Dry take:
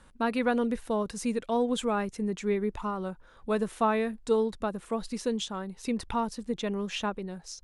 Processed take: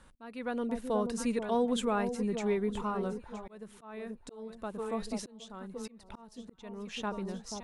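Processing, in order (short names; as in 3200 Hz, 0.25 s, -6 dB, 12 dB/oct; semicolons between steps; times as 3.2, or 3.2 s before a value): echo with dull and thin repeats by turns 0.484 s, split 900 Hz, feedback 56%, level -8.5 dB; auto swell 0.784 s; gain -2 dB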